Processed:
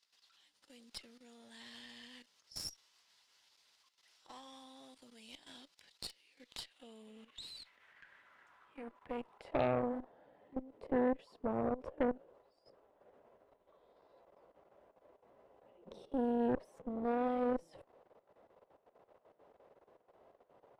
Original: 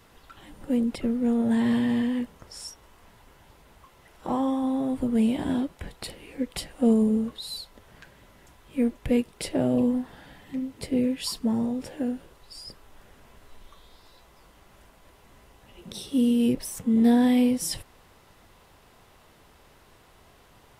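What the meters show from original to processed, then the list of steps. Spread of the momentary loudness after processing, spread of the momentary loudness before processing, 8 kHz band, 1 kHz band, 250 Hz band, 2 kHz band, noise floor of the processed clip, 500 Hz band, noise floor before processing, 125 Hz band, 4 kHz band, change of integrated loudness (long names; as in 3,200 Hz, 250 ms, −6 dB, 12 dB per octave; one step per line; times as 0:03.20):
23 LU, 18 LU, −18.5 dB, −5.5 dB, −18.5 dB, −10.5 dB, −76 dBFS, −8.0 dB, −57 dBFS, −14.5 dB, −13.0 dB, −13.5 dB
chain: output level in coarse steps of 14 dB
band-pass filter sweep 4,800 Hz → 550 Hz, 0:06.23–0:10.21
harmonic generator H 6 −17 dB, 7 −26 dB, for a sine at −26 dBFS
level +5 dB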